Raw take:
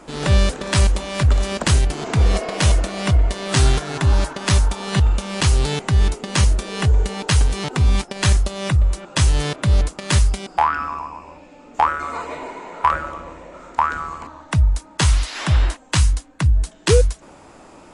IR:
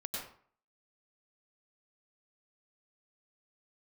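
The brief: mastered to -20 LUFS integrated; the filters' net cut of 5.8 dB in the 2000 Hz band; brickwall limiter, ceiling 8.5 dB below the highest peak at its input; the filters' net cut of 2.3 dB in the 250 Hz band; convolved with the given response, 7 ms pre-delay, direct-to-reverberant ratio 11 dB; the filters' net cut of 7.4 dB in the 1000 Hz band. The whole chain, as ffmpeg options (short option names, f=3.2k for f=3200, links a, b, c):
-filter_complex "[0:a]equalizer=f=250:t=o:g=-3.5,equalizer=f=1k:t=o:g=-7.5,equalizer=f=2k:t=o:g=-5,alimiter=limit=-12dB:level=0:latency=1,asplit=2[a][b];[1:a]atrim=start_sample=2205,adelay=7[c];[b][c]afir=irnorm=-1:irlink=0,volume=-12dB[d];[a][d]amix=inputs=2:normalize=0,volume=4dB"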